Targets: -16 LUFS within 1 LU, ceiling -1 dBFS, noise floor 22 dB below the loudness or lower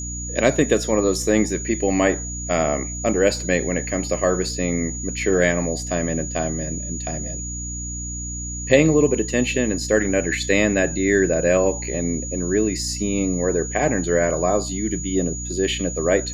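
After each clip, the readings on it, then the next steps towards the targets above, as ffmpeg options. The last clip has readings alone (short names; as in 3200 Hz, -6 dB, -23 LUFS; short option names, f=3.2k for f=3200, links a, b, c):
hum 60 Hz; harmonics up to 300 Hz; hum level -29 dBFS; steady tone 6800 Hz; tone level -30 dBFS; loudness -21.0 LUFS; peak -3.0 dBFS; loudness target -16.0 LUFS
-> -af "bandreject=f=60:t=h:w=6,bandreject=f=120:t=h:w=6,bandreject=f=180:t=h:w=6,bandreject=f=240:t=h:w=6,bandreject=f=300:t=h:w=6"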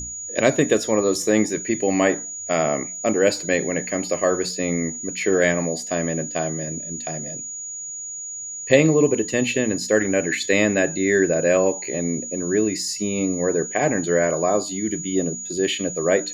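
hum none; steady tone 6800 Hz; tone level -30 dBFS
-> -af "bandreject=f=6.8k:w=30"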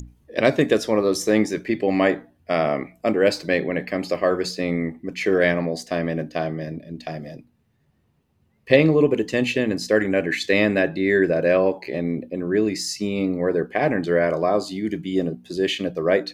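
steady tone none; loudness -22.0 LUFS; peak -3.0 dBFS; loudness target -16.0 LUFS
-> -af "volume=6dB,alimiter=limit=-1dB:level=0:latency=1"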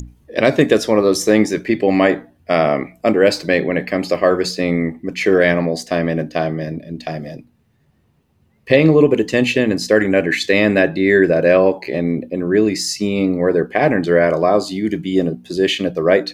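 loudness -16.5 LUFS; peak -1.0 dBFS; noise floor -59 dBFS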